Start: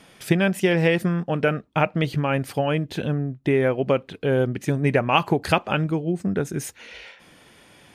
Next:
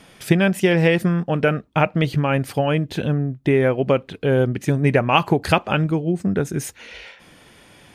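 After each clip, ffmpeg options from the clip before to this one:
-af "lowshelf=f=91:g=5.5,volume=1.33"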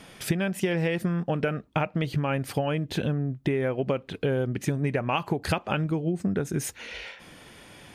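-af "acompressor=threshold=0.0708:ratio=6"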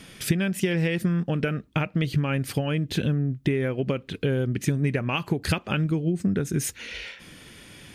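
-af "equalizer=f=780:w=0.96:g=-10,volume=1.58"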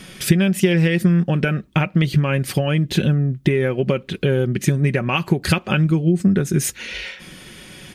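-af "aecho=1:1:5.4:0.39,volume=2"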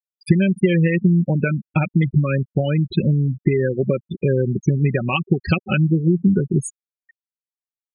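-af "afftfilt=real='re*gte(hypot(re,im),0.2)':imag='im*gte(hypot(re,im),0.2)':win_size=1024:overlap=0.75"

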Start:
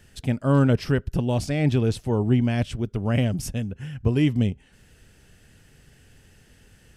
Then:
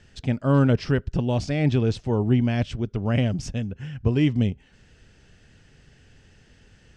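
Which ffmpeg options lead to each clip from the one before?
-af "lowpass=f=6700:w=0.5412,lowpass=f=6700:w=1.3066"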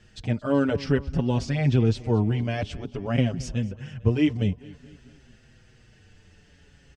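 -filter_complex "[0:a]aecho=1:1:224|448|672|896:0.0944|0.0519|0.0286|0.0157,asplit=2[s0][s1];[s1]adelay=6,afreqshift=-0.52[s2];[s0][s2]amix=inputs=2:normalize=1,volume=1.26"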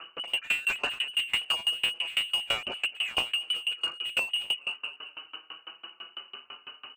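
-filter_complex "[0:a]lowpass=f=2600:t=q:w=0.5098,lowpass=f=2600:t=q:w=0.6013,lowpass=f=2600:t=q:w=0.9,lowpass=f=2600:t=q:w=2.563,afreqshift=-3000,asplit=2[s0][s1];[s1]highpass=f=720:p=1,volume=35.5,asoftclip=type=tanh:threshold=0.422[s2];[s0][s2]amix=inputs=2:normalize=0,lowpass=f=1100:p=1,volume=0.501,aeval=exprs='val(0)*pow(10,-27*if(lt(mod(6*n/s,1),2*abs(6)/1000),1-mod(6*n/s,1)/(2*abs(6)/1000),(mod(6*n/s,1)-2*abs(6)/1000)/(1-2*abs(6)/1000))/20)':c=same"

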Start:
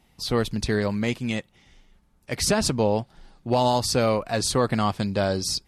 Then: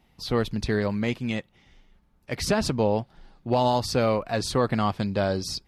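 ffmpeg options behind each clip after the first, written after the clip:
-af "equalizer=f=8800:t=o:w=1.3:g=-9,volume=0.891"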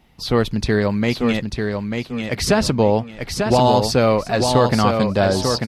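-af "aecho=1:1:893|1786|2679:0.562|0.146|0.038,volume=2.24"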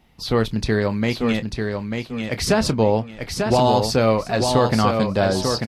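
-filter_complex "[0:a]asplit=2[s0][s1];[s1]adelay=27,volume=0.211[s2];[s0][s2]amix=inputs=2:normalize=0,volume=0.794"

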